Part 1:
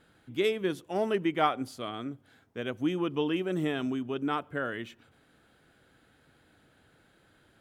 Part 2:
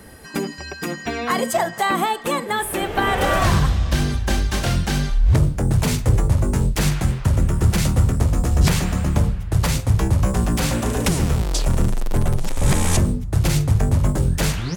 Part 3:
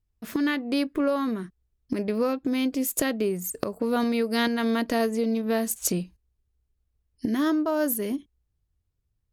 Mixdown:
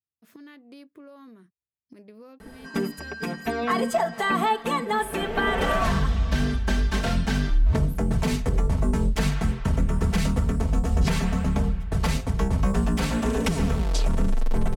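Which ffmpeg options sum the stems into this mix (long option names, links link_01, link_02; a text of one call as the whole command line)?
ffmpeg -i stem1.wav -i stem2.wav -i stem3.wav -filter_complex "[1:a]highshelf=frequency=6100:gain=-11.5,aecho=1:1:4.5:0.7,adelay=2400,volume=-4dB[link_01];[2:a]volume=-18.5dB,highpass=frequency=97:width=0.5412,highpass=frequency=97:width=1.3066,acompressor=threshold=-43dB:ratio=6,volume=0dB[link_02];[link_01][link_02]amix=inputs=2:normalize=0,alimiter=limit=-13dB:level=0:latency=1:release=119" out.wav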